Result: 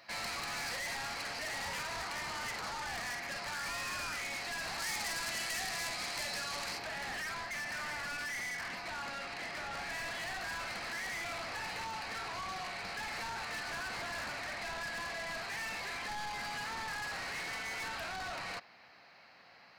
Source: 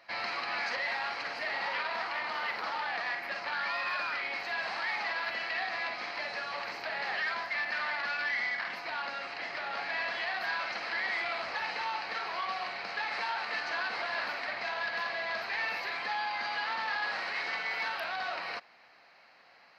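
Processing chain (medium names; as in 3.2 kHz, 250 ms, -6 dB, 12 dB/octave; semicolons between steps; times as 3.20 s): saturation -38 dBFS, distortion -9 dB; tone controls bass +9 dB, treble +8 dB, from 4.78 s treble +14 dB, from 6.77 s treble +3 dB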